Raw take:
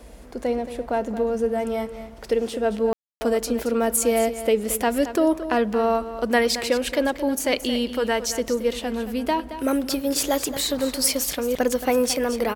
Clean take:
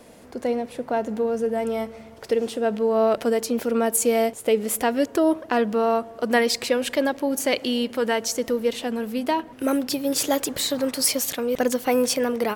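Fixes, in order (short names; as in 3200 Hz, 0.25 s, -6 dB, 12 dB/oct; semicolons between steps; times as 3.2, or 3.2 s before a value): room tone fill 2.93–3.21; noise print and reduce 6 dB; inverse comb 0.223 s -12.5 dB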